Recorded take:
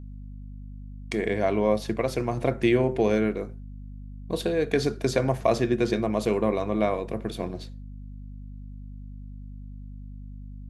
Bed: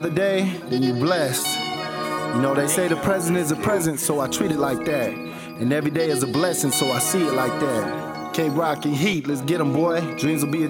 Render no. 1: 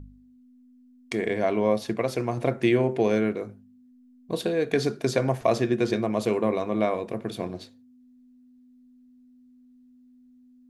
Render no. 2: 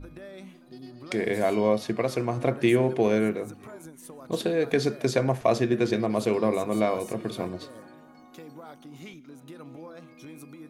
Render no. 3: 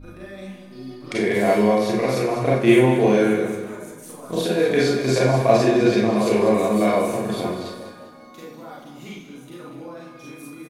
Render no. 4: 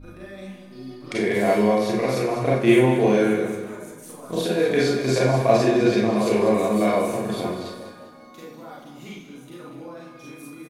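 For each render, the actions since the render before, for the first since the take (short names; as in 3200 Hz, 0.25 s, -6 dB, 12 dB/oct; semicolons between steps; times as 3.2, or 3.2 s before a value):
de-hum 50 Hz, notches 4
add bed -23.5 dB
feedback echo 0.198 s, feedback 40%, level -10.5 dB; Schroeder reverb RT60 0.48 s, combs from 31 ms, DRR -5.5 dB
gain -1.5 dB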